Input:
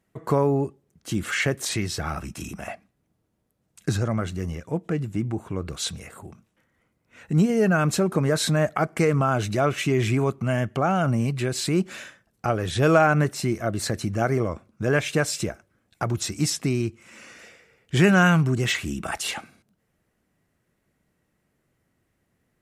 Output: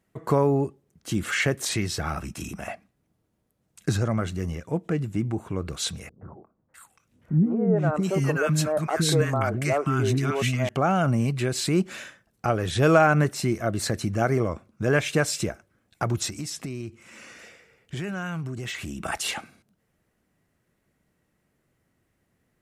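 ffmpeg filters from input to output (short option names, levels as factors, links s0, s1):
-filter_complex "[0:a]asettb=1/sr,asplit=3[s0][s1][s2];[s0]atrim=end=6.094[s3];[s1]atrim=start=6.09:end=10.69,asetpts=PTS-STARTPTS,afade=t=in:d=0.004:c=qsin,afade=t=out:st=4.596:d=0.004:c=qsin,acrossover=split=320|1200[s4][s5][s6];[s5]adelay=120[s7];[s6]adelay=650[s8];[s4][s7][s8]amix=inputs=3:normalize=0,atrim=end_sample=202860[s9];[s2]atrim=start=10.686[s10];[s3][s9]acrossfade=d=0.004:c1=hsin:c2=qsin[s11];[s11][s10]acrossfade=d=0.004:c1=qsin:c2=hsin,asettb=1/sr,asplit=3[s12][s13][s14];[s12]atrim=end=16.294[s15];[s13]atrim=start=16.29:end=19.05,asetpts=PTS-STARTPTS,afade=t=in:d=0.004:c=qsin,afade=t=out:st=2.756:d=0.004:c=qsin,acompressor=threshold=0.0316:ratio=5:attack=3.2:release=140:knee=1:detection=peak[s16];[s14]atrim=start=19.046[s17];[s15][s16]acrossfade=d=0.004:c1=hsin:c2=qsin[s18];[s18][s17]acrossfade=d=0.004:c1=qsin:c2=hsin"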